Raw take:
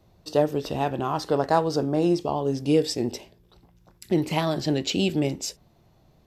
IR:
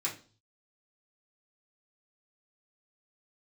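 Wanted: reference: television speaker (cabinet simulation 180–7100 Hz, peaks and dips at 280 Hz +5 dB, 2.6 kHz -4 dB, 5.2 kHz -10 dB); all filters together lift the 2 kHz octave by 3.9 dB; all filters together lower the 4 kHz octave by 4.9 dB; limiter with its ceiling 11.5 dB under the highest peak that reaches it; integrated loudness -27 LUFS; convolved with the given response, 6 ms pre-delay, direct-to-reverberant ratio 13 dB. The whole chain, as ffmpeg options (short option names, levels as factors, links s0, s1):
-filter_complex "[0:a]equalizer=f=2000:t=o:g=8.5,equalizer=f=4000:t=o:g=-6,alimiter=limit=0.141:level=0:latency=1,asplit=2[s0][s1];[1:a]atrim=start_sample=2205,adelay=6[s2];[s1][s2]afir=irnorm=-1:irlink=0,volume=0.141[s3];[s0][s3]amix=inputs=2:normalize=0,highpass=f=180:w=0.5412,highpass=f=180:w=1.3066,equalizer=f=280:t=q:w=4:g=5,equalizer=f=2600:t=q:w=4:g=-4,equalizer=f=5200:t=q:w=4:g=-10,lowpass=f=7100:w=0.5412,lowpass=f=7100:w=1.3066"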